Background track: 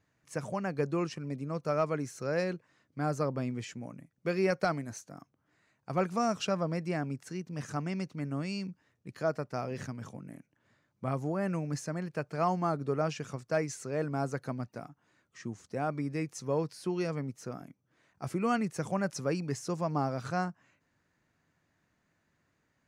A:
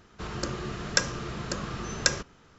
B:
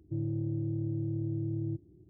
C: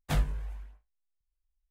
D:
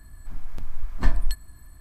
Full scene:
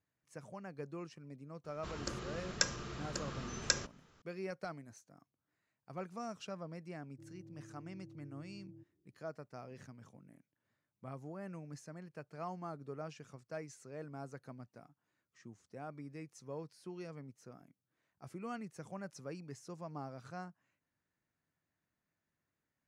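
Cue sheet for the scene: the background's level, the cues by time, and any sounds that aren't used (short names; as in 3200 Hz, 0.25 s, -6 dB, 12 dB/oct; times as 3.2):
background track -14 dB
1.64 add A -9.5 dB + high shelf 4300 Hz +4 dB
7.07 add B -17 dB + HPF 280 Hz 6 dB/oct
not used: C, D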